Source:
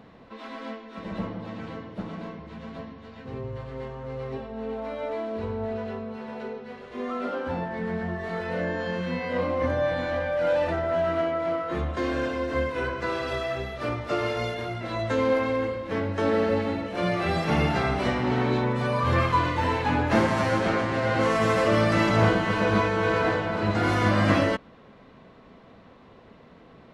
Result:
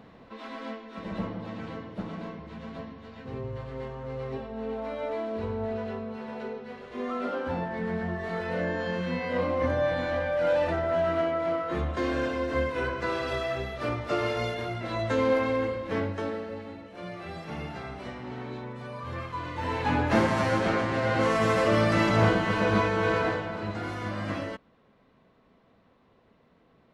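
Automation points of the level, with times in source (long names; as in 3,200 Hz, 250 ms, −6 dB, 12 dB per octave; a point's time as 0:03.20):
0:16.03 −1 dB
0:16.44 −13.5 dB
0:19.33 −13.5 dB
0:19.88 −1.5 dB
0:23.12 −1.5 dB
0:23.94 −11.5 dB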